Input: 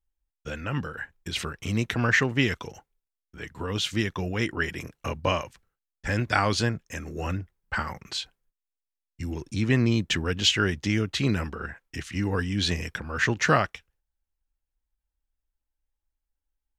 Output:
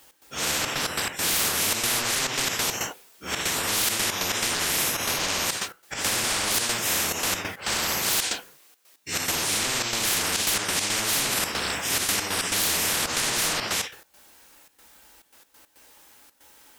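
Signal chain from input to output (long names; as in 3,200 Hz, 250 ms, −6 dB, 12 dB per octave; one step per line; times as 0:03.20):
random phases in long frames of 200 ms
high-pass filter 280 Hz 12 dB per octave
downward compressor, threshold −30 dBFS, peak gain reduction 11.5 dB
gate pattern "x.xxxx.x.x.xxxx" 139 BPM −12 dB
soft clipping −25.5 dBFS, distortion −20 dB
boost into a limiter +30.5 dB
every bin compressed towards the loudest bin 10 to 1
level −7 dB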